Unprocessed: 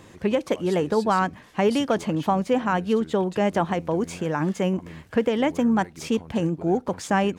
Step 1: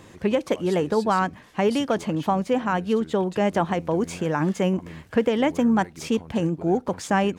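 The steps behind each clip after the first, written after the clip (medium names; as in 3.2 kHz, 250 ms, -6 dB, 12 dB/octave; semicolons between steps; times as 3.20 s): gain riding 2 s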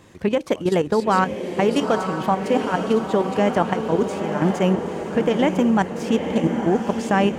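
level held to a coarse grid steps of 11 dB; echo that smears into a reverb 921 ms, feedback 55%, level -6.5 dB; trim +5 dB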